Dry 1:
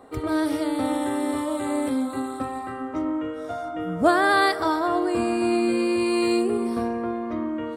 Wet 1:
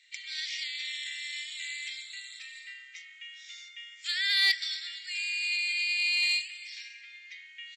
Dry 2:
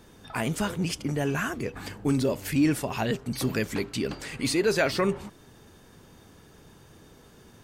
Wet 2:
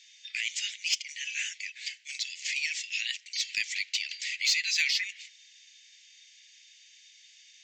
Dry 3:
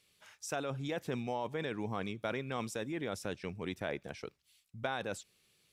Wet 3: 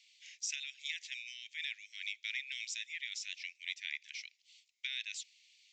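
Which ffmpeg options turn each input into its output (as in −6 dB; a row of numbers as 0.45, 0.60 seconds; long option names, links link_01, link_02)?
-af "asuperpass=centerf=5900:order=20:qfactor=0.52,aresample=16000,aresample=44100,aeval=exprs='0.126*(cos(1*acos(clip(val(0)/0.126,-1,1)))-cos(1*PI/2))+0.00631*(cos(5*acos(clip(val(0)/0.126,-1,1)))-cos(5*PI/2))':channel_layout=same,volume=5.5dB"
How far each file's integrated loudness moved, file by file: −5.0, −2.0, −1.5 LU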